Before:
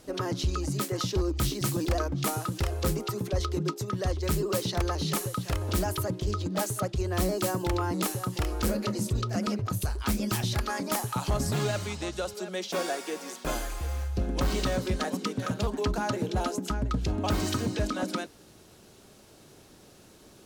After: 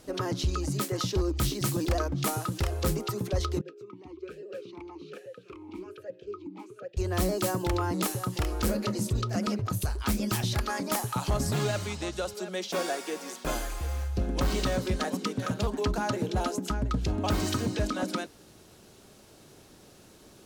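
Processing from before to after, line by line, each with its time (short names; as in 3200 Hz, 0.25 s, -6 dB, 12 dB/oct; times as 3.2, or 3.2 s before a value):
3.61–6.97 vowel sweep e-u 1.2 Hz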